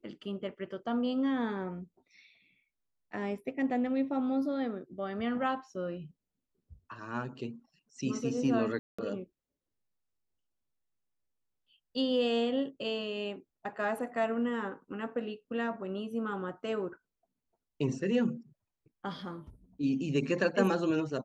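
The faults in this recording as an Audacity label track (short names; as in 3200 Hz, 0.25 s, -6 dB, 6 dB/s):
8.790000	8.980000	gap 0.195 s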